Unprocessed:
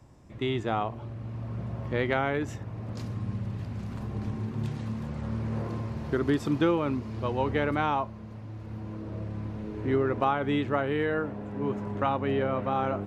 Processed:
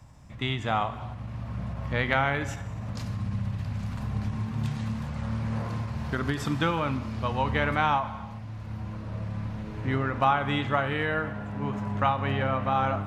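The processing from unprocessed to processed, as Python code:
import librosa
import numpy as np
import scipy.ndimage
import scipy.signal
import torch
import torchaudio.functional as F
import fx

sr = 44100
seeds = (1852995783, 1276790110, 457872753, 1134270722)

y = fx.peak_eq(x, sr, hz=370.0, db=-14.5, octaves=1.0)
y = fx.rev_gated(y, sr, seeds[0], gate_ms=420, shape='falling', drr_db=10.5)
y = fx.end_taper(y, sr, db_per_s=110.0)
y = y * librosa.db_to_amplitude(5.5)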